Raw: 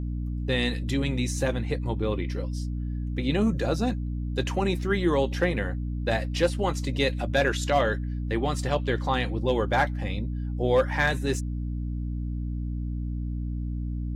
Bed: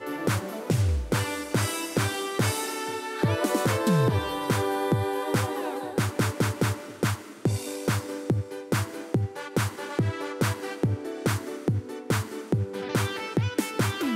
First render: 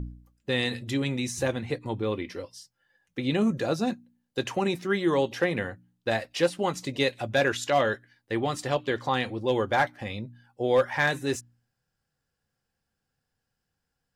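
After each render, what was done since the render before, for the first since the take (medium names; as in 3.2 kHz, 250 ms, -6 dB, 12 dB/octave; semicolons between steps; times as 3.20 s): de-hum 60 Hz, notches 5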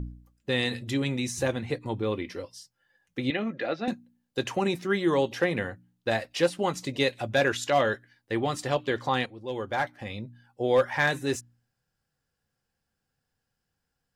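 3.30–3.88 s: cabinet simulation 320–3700 Hz, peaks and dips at 410 Hz -6 dB, 1 kHz -7 dB, 2 kHz +8 dB; 9.26–10.86 s: fade in equal-power, from -14.5 dB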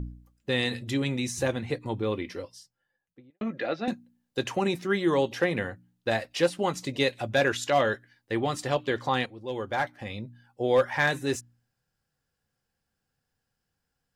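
2.35–3.41 s: studio fade out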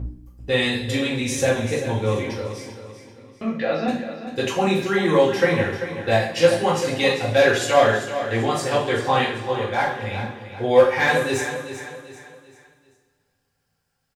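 feedback delay 390 ms, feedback 39%, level -11 dB; two-slope reverb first 0.46 s, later 2.2 s, from -18 dB, DRR -6.5 dB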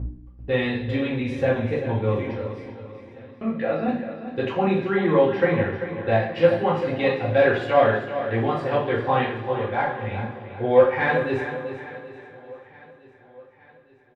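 distance through air 450 m; feedback delay 866 ms, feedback 57%, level -21.5 dB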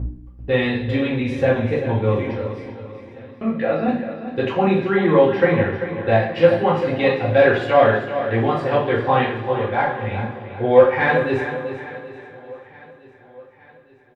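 trim +4 dB; peak limiter -1 dBFS, peak gain reduction 1 dB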